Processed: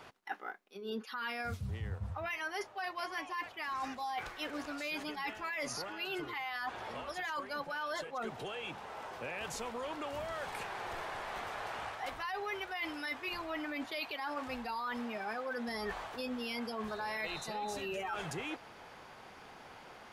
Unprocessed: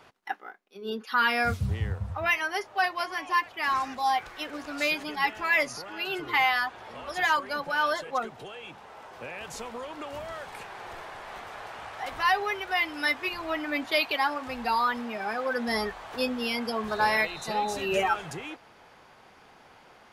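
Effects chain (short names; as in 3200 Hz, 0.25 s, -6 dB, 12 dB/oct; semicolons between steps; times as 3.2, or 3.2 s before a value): limiter -22 dBFS, peak gain reduction 10 dB; reverse; compressor, threshold -38 dBFS, peak gain reduction 12 dB; reverse; gain +1.5 dB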